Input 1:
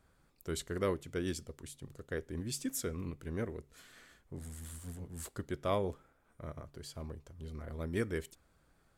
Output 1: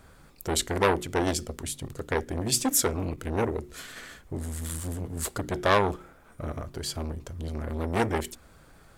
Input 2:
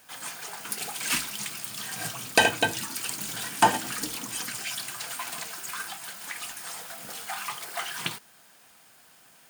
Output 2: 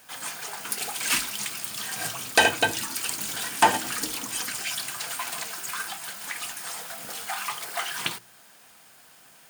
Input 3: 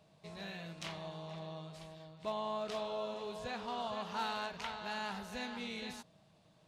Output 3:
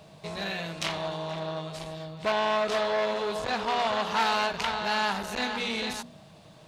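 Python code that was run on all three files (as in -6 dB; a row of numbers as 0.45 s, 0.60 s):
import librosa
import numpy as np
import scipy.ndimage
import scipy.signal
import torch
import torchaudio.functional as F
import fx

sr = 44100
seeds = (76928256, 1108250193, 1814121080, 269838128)

y = fx.hum_notches(x, sr, base_hz=60, count=6)
y = fx.dynamic_eq(y, sr, hz=160.0, q=1.3, threshold_db=-54.0, ratio=4.0, max_db=-5)
y = fx.transformer_sat(y, sr, knee_hz=1700.0)
y = y * 10.0 ** (-30 / 20.0) / np.sqrt(np.mean(np.square(y)))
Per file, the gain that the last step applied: +16.0 dB, +3.0 dB, +15.0 dB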